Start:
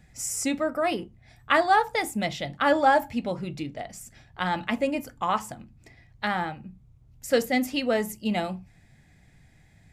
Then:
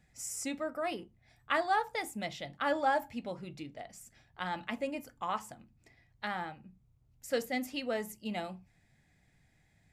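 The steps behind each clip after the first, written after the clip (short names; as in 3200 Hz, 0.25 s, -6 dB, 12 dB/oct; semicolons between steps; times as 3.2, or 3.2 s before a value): low shelf 230 Hz -4.5 dB; gain -9 dB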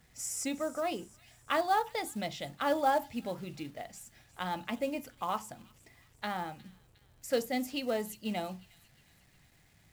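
companded quantiser 6-bit; dynamic EQ 1800 Hz, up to -6 dB, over -47 dBFS, Q 1.4; thin delay 0.359 s, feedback 50%, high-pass 2800 Hz, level -17 dB; gain +2.5 dB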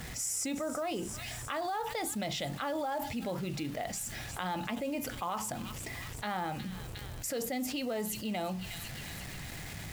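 limiter -28 dBFS, peak gain reduction 11.5 dB; fast leveller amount 70%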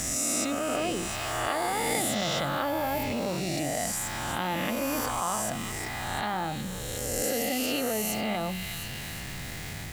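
spectral swells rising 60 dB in 2.19 s; gain +1.5 dB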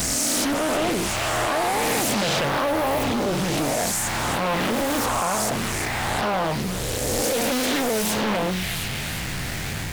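hard clip -28 dBFS, distortion -11 dB; Doppler distortion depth 0.92 ms; gain +9 dB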